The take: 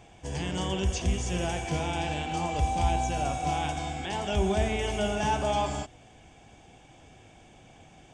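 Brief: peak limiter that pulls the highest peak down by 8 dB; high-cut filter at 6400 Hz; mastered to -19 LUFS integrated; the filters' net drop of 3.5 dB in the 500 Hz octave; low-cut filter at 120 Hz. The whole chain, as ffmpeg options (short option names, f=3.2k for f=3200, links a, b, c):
-af "highpass=120,lowpass=6.4k,equalizer=f=500:t=o:g=-5,volume=16.5dB,alimiter=limit=-9.5dB:level=0:latency=1"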